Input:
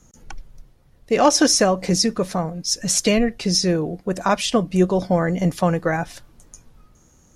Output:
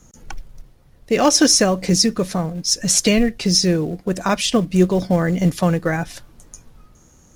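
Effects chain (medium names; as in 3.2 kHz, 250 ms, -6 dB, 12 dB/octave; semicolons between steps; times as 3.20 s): dynamic bell 830 Hz, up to -6 dB, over -33 dBFS, Q 0.79; in parallel at -9 dB: short-mantissa float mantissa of 2-bit; on the sum: trim +1 dB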